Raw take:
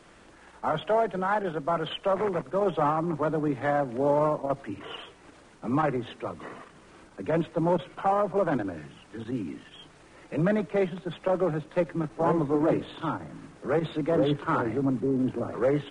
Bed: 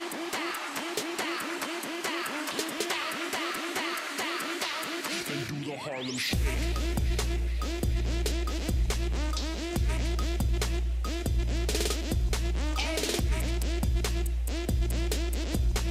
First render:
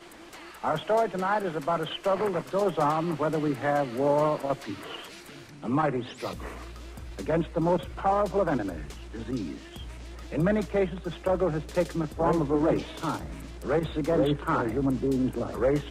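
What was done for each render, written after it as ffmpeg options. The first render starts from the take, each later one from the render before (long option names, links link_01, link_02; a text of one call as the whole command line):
ffmpeg -i in.wav -i bed.wav -filter_complex "[1:a]volume=-13.5dB[link_01];[0:a][link_01]amix=inputs=2:normalize=0" out.wav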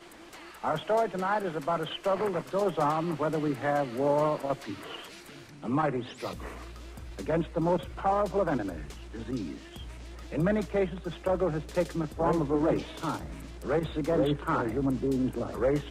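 ffmpeg -i in.wav -af "volume=-2dB" out.wav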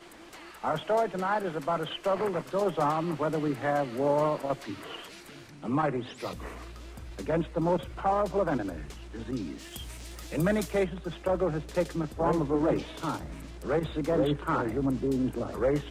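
ffmpeg -i in.wav -filter_complex "[0:a]asplit=3[link_01][link_02][link_03];[link_01]afade=type=out:start_time=9.58:duration=0.02[link_04];[link_02]aemphasis=mode=production:type=75kf,afade=type=in:start_time=9.58:duration=0.02,afade=type=out:start_time=10.83:duration=0.02[link_05];[link_03]afade=type=in:start_time=10.83:duration=0.02[link_06];[link_04][link_05][link_06]amix=inputs=3:normalize=0" out.wav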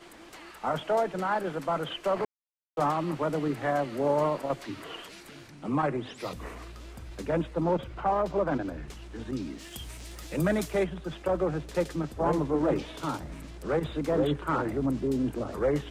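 ffmpeg -i in.wav -filter_complex "[0:a]asettb=1/sr,asplit=3[link_01][link_02][link_03];[link_01]atrim=end=7.614[link_04];[link_02]atrim=start=7.61:end=8.88,asetpts=PTS-STARTPTS,afade=type=in:duration=0.004:curve=qsin,afade=type=out:start_time=1.266:duration=0.004:curve=qsin,equalizer=frequency=11000:width=0.58:gain=-9[link_05];[link_03]atrim=start=8.876[link_06];[link_04][link_05]acrossfade=duration=0.004:curve1=hsin:curve2=qsin[link_07];[link_07][link_06]acrossfade=duration=0.004:curve1=qsin:curve2=hsin,asplit=3[link_08][link_09][link_10];[link_08]atrim=end=2.25,asetpts=PTS-STARTPTS,afade=type=out:start_time=2.246:duration=0.004:curve=hsin[link_11];[link_09]atrim=start=2.25:end=2.77,asetpts=PTS-STARTPTS,volume=0[link_12];[link_10]atrim=start=2.77,asetpts=PTS-STARTPTS,afade=type=in:duration=0.004:curve=hsin[link_13];[link_11][link_12][link_13]concat=n=3:v=0:a=1" out.wav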